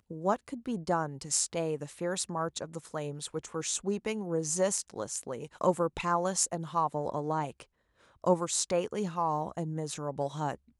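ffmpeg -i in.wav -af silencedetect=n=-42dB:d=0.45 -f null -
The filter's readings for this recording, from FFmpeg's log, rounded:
silence_start: 7.62
silence_end: 8.24 | silence_duration: 0.62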